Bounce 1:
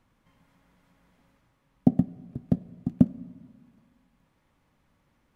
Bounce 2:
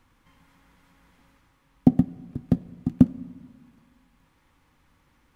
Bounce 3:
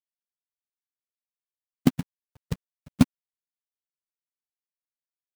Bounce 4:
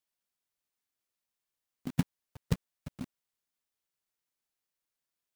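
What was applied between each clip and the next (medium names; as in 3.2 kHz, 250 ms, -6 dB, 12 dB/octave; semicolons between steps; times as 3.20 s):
graphic EQ with 31 bands 125 Hz -7 dB, 200 Hz -9 dB, 400 Hz -5 dB, 630 Hz -10 dB; trim +7 dB
expander on every frequency bin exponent 3; companded quantiser 4-bit
compressor with a negative ratio -28 dBFS, ratio -1; trim -1.5 dB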